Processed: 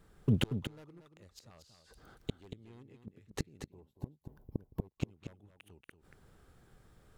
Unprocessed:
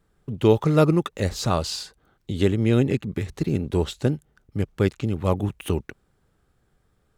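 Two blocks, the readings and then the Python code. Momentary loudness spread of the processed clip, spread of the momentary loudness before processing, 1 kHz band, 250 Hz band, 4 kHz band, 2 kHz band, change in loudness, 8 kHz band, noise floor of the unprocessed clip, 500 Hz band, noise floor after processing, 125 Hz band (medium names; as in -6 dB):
25 LU, 13 LU, -25.0 dB, -17.0 dB, -14.0 dB, -15.5 dB, -16.0 dB, -17.5 dB, -67 dBFS, -24.5 dB, -72 dBFS, -15.5 dB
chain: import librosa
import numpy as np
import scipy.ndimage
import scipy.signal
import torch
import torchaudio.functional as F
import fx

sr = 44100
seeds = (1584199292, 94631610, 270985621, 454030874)

p1 = 10.0 ** (-12.5 / 20.0) * (np.abs((x / 10.0 ** (-12.5 / 20.0) + 3.0) % 4.0 - 2.0) - 1.0)
p2 = fx.gate_flip(p1, sr, shuts_db=-22.0, range_db=-39)
p3 = fx.spec_box(p2, sr, start_s=3.7, length_s=1.3, low_hz=1100.0, high_hz=11000.0, gain_db=-17)
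p4 = p3 + fx.echo_single(p3, sr, ms=233, db=-8.5, dry=0)
y = F.gain(torch.from_numpy(p4), 4.0).numpy()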